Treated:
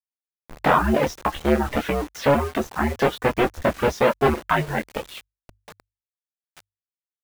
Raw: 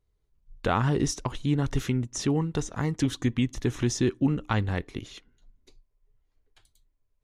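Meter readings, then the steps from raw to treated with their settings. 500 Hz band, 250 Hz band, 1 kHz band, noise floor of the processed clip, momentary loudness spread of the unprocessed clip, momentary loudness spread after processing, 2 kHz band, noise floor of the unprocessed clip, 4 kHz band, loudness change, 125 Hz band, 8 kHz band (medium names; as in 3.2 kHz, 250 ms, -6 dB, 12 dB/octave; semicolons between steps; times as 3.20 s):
+11.5 dB, +1.5 dB, +12.0 dB, under -85 dBFS, 7 LU, 8 LU, +10.5 dB, -74 dBFS, +3.5 dB, +5.5 dB, -2.5 dB, -4.5 dB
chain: cycle switcher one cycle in 2, inverted; in parallel at -1.5 dB: compression 12:1, threshold -36 dBFS, peak gain reduction 18 dB; on the sum: bass shelf 260 Hz -10 dB; on a send: early reflections 14 ms -5 dB, 27 ms -5.5 dB; on the sum: saturation -18 dBFS, distortion -16 dB; peaking EQ 670 Hz +4 dB 1.5 oct; reverb removal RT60 1.5 s; Chebyshev low-pass 2.2 kHz, order 2; word length cut 8-bit, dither none; hum notches 50/100 Hz; trim +8 dB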